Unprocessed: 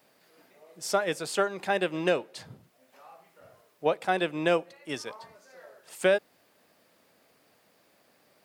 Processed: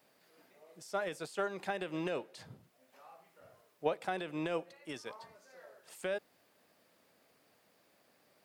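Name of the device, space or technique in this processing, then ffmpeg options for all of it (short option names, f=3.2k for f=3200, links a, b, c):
de-esser from a sidechain: -filter_complex "[0:a]asplit=2[a][b];[b]highpass=4.1k,apad=whole_len=372608[c];[a][c]sidechaincompress=threshold=-45dB:ratio=12:attack=4.8:release=58,volume=-5dB"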